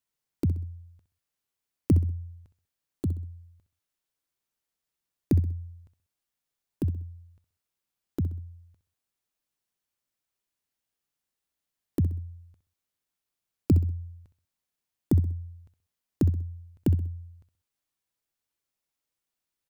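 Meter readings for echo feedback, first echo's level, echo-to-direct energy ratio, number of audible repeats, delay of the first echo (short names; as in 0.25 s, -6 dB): 35%, -13.0 dB, -12.5 dB, 3, 64 ms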